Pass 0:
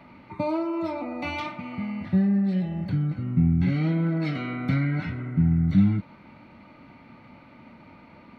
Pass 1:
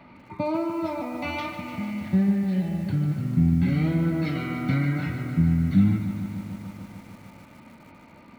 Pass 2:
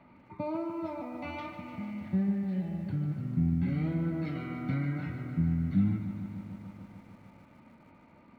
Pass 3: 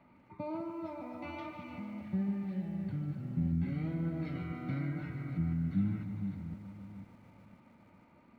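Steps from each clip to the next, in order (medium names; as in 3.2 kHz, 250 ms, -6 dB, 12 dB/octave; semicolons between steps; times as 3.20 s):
bit-crushed delay 149 ms, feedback 80%, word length 8-bit, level -10 dB
treble shelf 3.5 kHz -11.5 dB; trim -7.5 dB
chunks repeated in reverse 503 ms, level -8 dB; trim -5 dB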